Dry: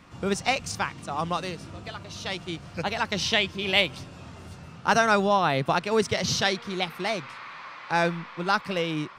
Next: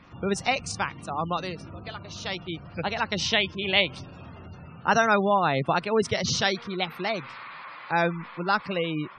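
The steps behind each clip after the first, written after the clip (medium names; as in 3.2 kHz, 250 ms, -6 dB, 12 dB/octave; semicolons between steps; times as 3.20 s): spectral gate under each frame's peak -25 dB strong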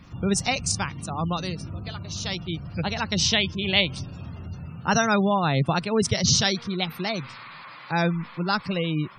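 tone controls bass +11 dB, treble +13 dB; trim -2 dB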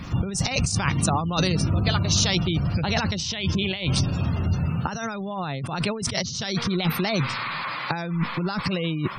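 compressor with a negative ratio -32 dBFS, ratio -1; trim +7 dB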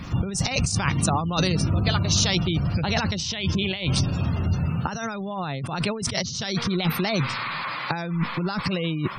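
no audible change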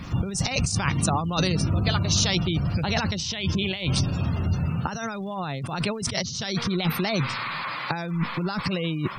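crackle 240 per s -52 dBFS; trim -1 dB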